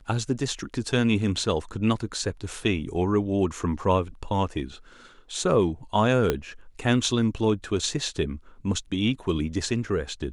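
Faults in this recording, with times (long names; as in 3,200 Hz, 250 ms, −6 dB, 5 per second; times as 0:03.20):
0:06.30: click −9 dBFS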